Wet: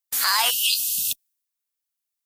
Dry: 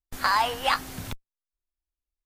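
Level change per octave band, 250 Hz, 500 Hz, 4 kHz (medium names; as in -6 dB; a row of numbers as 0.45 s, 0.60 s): under -10 dB, -7.5 dB, +10.0 dB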